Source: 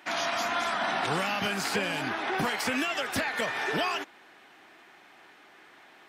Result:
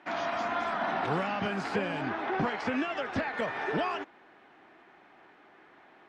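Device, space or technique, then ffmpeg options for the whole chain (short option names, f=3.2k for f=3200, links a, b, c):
through cloth: -filter_complex "[0:a]asettb=1/sr,asplit=3[a][b][c];[a]atrim=end=2.274[d];[b]atrim=start=2.27:end=3.34,asetpts=PTS-STARTPTS,afade=t=in:d=0.004:c=qsin,afade=t=out:st=1.066:d=0.004:c=qsin,lowpass=f=7.2k:w=0.5412,lowpass=f=7.2k:w=1.3066[e];[c]atrim=start=3.336[f];[d][e]acrossfade=d=0.004:c1=hsin:c2=qsin[g];[g][f]acrossfade=d=0.004:c1=qsin:c2=hsin,lowpass=8.9k,highshelf=f=2.6k:g=-16.5,highshelf=f=11k:g=-9.5,volume=1dB"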